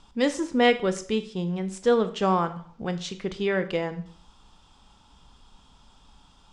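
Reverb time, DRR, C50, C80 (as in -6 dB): 0.50 s, 10.5 dB, 14.0 dB, 17.5 dB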